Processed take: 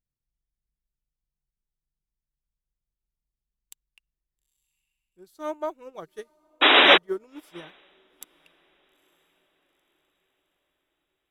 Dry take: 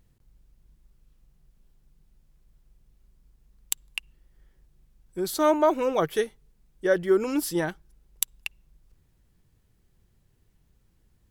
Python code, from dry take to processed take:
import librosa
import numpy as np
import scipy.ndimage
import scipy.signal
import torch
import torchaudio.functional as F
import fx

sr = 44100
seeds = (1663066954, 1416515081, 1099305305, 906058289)

y = fx.spec_paint(x, sr, seeds[0], shape='noise', start_s=6.61, length_s=0.37, low_hz=250.0, high_hz=3900.0, level_db=-13.0)
y = fx.echo_diffused(y, sr, ms=902, feedback_pct=50, wet_db=-15)
y = fx.upward_expand(y, sr, threshold_db=-30.0, expansion=2.5)